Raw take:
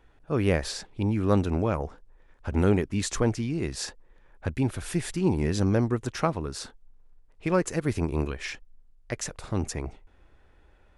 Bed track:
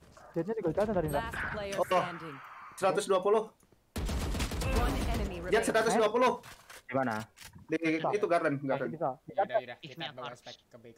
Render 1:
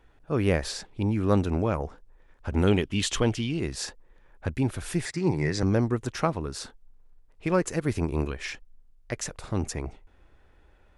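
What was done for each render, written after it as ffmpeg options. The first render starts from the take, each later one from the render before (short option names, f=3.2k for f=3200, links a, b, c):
-filter_complex "[0:a]asettb=1/sr,asplit=3[a][b][c];[a]atrim=end=2.674[d];[b]atrim=start=2.67:end=3.6,asetpts=PTS-STARTPTS,afade=t=in:d=0.004:c=qsin,afade=t=out:st=0.926:d=0.004:c=qsin,equalizer=f=3.1k:w=2.7:g=14.5[e];[c]atrim=start=3.596[f];[d][e]acrossfade=d=0.004:c1=hsin:c2=qsin[g];[g][f]acrossfade=d=0.004:c1=qsin:c2=hsin,asettb=1/sr,asplit=3[h][i][j];[h]atrim=end=5.054[k];[i]atrim=start=5.05:end=5.63,asetpts=PTS-STARTPTS,afade=t=in:d=0.004:c=qsin,afade=t=out:st=0.576:d=0.004:c=qsin,highpass=120,equalizer=f=140:t=q:w=4:g=7,equalizer=f=220:t=q:w=4:g=-9,equalizer=f=2k:t=q:w=4:g=10,equalizer=f=3k:t=q:w=4:g=-9,equalizer=f=4.9k:t=q:w=4:g=5,lowpass=f=8.7k:w=0.5412,lowpass=f=8.7k:w=1.3066[l];[j]atrim=start=5.626[m];[k][l]acrossfade=d=0.004:c1=hsin:c2=qsin[n];[n][m]acrossfade=d=0.004:c1=qsin:c2=hsin"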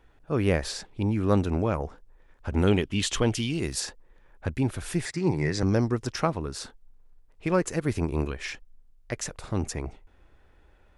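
-filter_complex "[0:a]asplit=3[a][b][c];[a]afade=t=out:st=3.33:d=0.02[d];[b]aemphasis=mode=production:type=50kf,afade=t=in:st=3.33:d=0.02,afade=t=out:st=3.79:d=0.02[e];[c]afade=t=in:st=3.79:d=0.02[f];[d][e][f]amix=inputs=3:normalize=0,asettb=1/sr,asplit=3[g][h][i];[g]atrim=end=5.684[j];[h]atrim=start=5.68:end=6.16,asetpts=PTS-STARTPTS,afade=t=in:d=0.004:c=qsin,afade=t=out:st=0.476:d=0.004:c=qsin,equalizer=f=5.2k:t=o:w=0.33:g=11[k];[i]atrim=start=6.156[l];[j][k]acrossfade=d=0.004:c1=hsin:c2=qsin[m];[m][l]acrossfade=d=0.004:c1=qsin:c2=hsin"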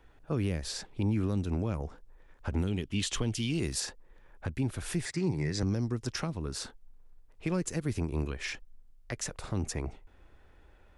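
-filter_complex "[0:a]acrossover=split=290|3000[a][b][c];[b]acompressor=threshold=-34dB:ratio=6[d];[a][d][c]amix=inputs=3:normalize=0,alimiter=limit=-21dB:level=0:latency=1:release=376"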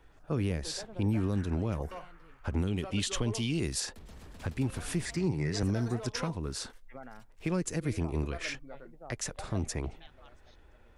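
-filter_complex "[1:a]volume=-16.5dB[a];[0:a][a]amix=inputs=2:normalize=0"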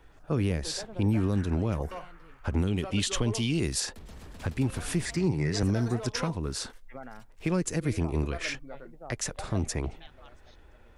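-af "volume=3.5dB"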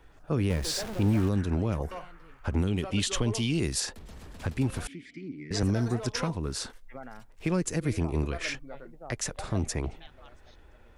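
-filter_complex "[0:a]asettb=1/sr,asplit=3[a][b][c];[a]atrim=end=0.504[d];[b]atrim=start=0.5:end=1.29,asetpts=PTS-STARTPTS,afade=t=in:d=0.004:c=qsin,afade=t=out:st=0.786:d=0.004:c=qsin,aeval=exprs='val(0)+0.5*0.0188*sgn(val(0))':c=same[e];[c]atrim=start=1.286[f];[d][e]acrossfade=d=0.004:c1=hsin:c2=qsin[g];[g][f]acrossfade=d=0.004:c1=qsin:c2=hsin,asettb=1/sr,asplit=3[h][i][j];[h]atrim=end=4.874[k];[i]atrim=start=4.87:end=5.51,asetpts=PTS-STARTPTS,afade=t=in:d=0.004:c=qsin,afade=t=out:st=0.636:d=0.004:c=qsin,asplit=3[l][m][n];[l]bandpass=f=270:t=q:w=8,volume=0dB[o];[m]bandpass=f=2.29k:t=q:w=8,volume=-6dB[p];[n]bandpass=f=3.01k:t=q:w=8,volume=-9dB[q];[o][p][q]amix=inputs=3:normalize=0[r];[j]atrim=start=5.506[s];[k][r]acrossfade=d=0.004:c1=hsin:c2=qsin[t];[t][s]acrossfade=d=0.004:c1=qsin:c2=hsin"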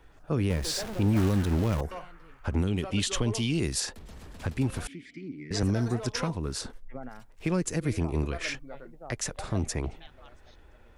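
-filter_complex "[0:a]asettb=1/sr,asplit=3[a][b][c];[a]atrim=end=1.164[d];[b]atrim=start=1.16:end=1.81,asetpts=PTS-STARTPTS,afade=t=in:d=0.004:c=qsin,afade=t=out:st=0.646:d=0.004:c=qsin,aeval=exprs='val(0)+0.5*0.0282*sgn(val(0))':c=same[e];[c]atrim=start=1.806[f];[d][e]acrossfade=d=0.004:c1=hsin:c2=qsin[g];[g][f]acrossfade=d=0.004:c1=qsin:c2=hsin,asettb=1/sr,asplit=3[h][i][j];[h]atrim=end=6.614[k];[i]atrim=start=6.61:end=7.09,asetpts=PTS-STARTPTS,afade=t=in:d=0.004:c=qsin,afade=t=out:st=0.476:d=0.004:c=qsin,tiltshelf=f=790:g=6[l];[j]atrim=start=7.086[m];[k][l]acrossfade=d=0.004:c1=hsin:c2=qsin[n];[n][m]acrossfade=d=0.004:c1=qsin:c2=hsin"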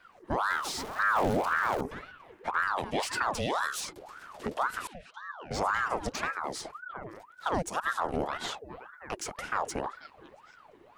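-filter_complex "[0:a]acrossover=split=2600[a][b];[b]asoftclip=type=tanh:threshold=-28.5dB[c];[a][c]amix=inputs=2:normalize=0,aeval=exprs='val(0)*sin(2*PI*910*n/s+910*0.65/1.9*sin(2*PI*1.9*n/s))':c=same"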